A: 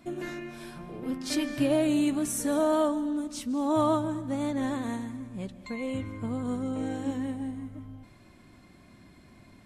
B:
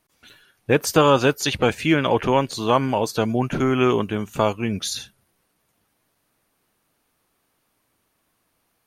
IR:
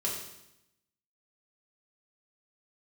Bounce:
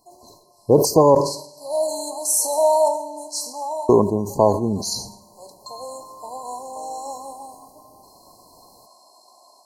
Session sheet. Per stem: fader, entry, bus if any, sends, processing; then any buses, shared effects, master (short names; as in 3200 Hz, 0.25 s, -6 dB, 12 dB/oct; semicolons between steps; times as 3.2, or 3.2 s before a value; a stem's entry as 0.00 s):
0.0 dB, 0.00 s, send -11.5 dB, Chebyshev high-pass 730 Hz, order 3; auto duck -6 dB, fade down 0.35 s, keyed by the second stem
+2.5 dB, 0.00 s, muted 1.15–3.89, send -22.5 dB, bell 690 Hz +5.5 dB 2.8 oct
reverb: on, RT60 0.85 s, pre-delay 3 ms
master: AGC gain up to 11.5 dB; brick-wall FIR band-stop 1100–4000 Hz; sustainer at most 92 dB/s